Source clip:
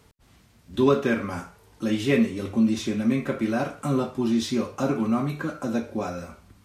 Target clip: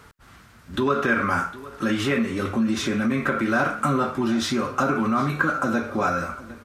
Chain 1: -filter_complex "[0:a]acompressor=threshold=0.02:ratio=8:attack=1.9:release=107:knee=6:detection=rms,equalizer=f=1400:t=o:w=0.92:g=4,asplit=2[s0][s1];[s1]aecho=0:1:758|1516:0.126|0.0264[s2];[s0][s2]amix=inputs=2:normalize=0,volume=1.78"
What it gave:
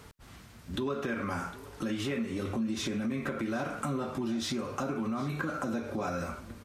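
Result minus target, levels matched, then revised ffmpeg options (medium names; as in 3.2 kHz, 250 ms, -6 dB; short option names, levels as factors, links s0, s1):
compression: peak gain reduction +9.5 dB; 1 kHz band -3.0 dB
-filter_complex "[0:a]acompressor=threshold=0.0708:ratio=8:attack=1.9:release=107:knee=6:detection=rms,equalizer=f=1400:t=o:w=0.92:g=12.5,asplit=2[s0][s1];[s1]aecho=0:1:758|1516:0.126|0.0264[s2];[s0][s2]amix=inputs=2:normalize=0,volume=1.78"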